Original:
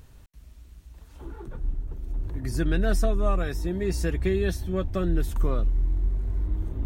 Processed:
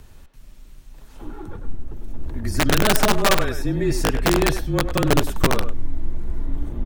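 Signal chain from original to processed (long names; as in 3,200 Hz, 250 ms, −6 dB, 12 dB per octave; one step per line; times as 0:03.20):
frequency shifter −31 Hz
wrap-around overflow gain 16 dB
far-end echo of a speakerphone 100 ms, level −7 dB
level +6 dB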